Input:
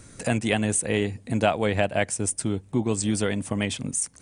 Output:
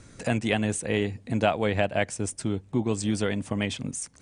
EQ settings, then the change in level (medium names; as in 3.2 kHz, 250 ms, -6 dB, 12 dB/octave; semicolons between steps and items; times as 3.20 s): low-pass 6.6 kHz 12 dB/octave; -1.5 dB